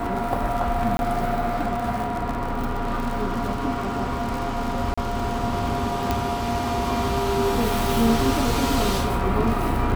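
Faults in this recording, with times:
crackle 60/s -27 dBFS
0.97–0.99 gap 21 ms
4.94–4.97 gap 35 ms
6.11 pop -8 dBFS

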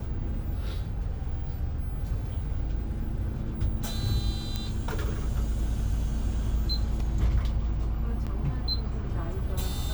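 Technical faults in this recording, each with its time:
4.56 pop -15 dBFS
8.26–8.27 gap 6.7 ms

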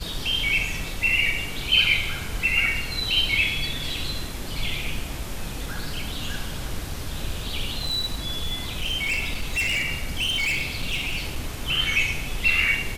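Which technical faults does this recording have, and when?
7.77–11.62 clipped -21 dBFS

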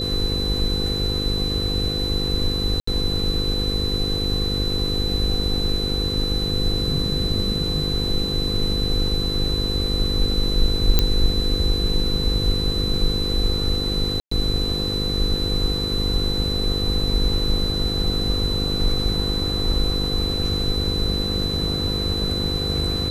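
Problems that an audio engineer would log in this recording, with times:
buzz 50 Hz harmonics 10 -27 dBFS
tone 4000 Hz -25 dBFS
2.8–2.87 gap 74 ms
10.99 pop -2 dBFS
14.2–14.31 gap 0.114 s

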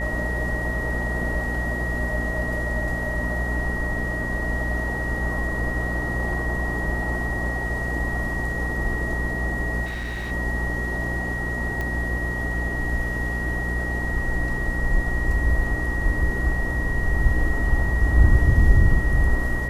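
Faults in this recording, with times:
buzz 60 Hz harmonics 10 -28 dBFS
tone 1900 Hz -28 dBFS
9.85–10.32 clipped -26.5 dBFS
11.81 pop -16 dBFS

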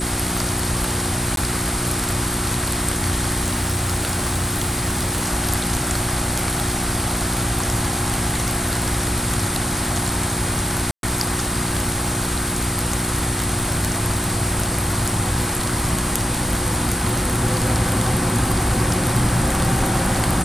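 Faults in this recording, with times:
crackle 89/s -28 dBFS
hum 60 Hz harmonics 6 -27 dBFS
tone 8100 Hz -27 dBFS
1.36–1.37 gap 12 ms
3.42–5.28 clipped -16 dBFS
10.91–11.03 gap 0.122 s

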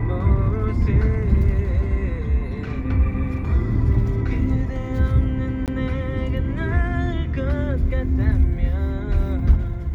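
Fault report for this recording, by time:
5.66–5.68 gap 18 ms

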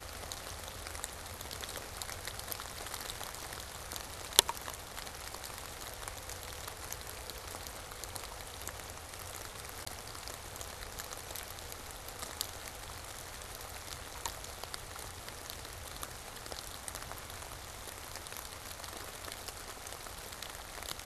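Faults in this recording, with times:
9.85–9.87 gap 15 ms

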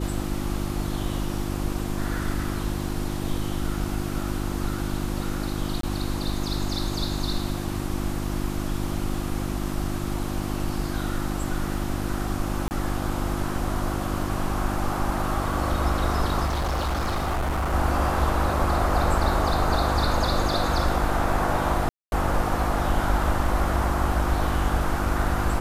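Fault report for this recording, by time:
hum 50 Hz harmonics 7 -30 dBFS
5.81–5.83 gap 23 ms
12.68–12.71 gap 29 ms
16.46–17.74 clipped -22 dBFS
21.89–22.12 gap 0.231 s

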